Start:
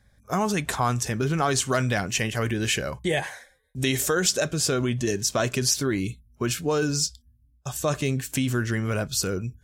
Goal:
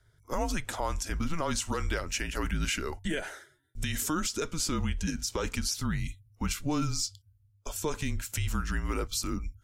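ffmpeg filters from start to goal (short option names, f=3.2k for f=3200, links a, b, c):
-af "alimiter=limit=-16.5dB:level=0:latency=1:release=129,afreqshift=-160,volume=-4dB"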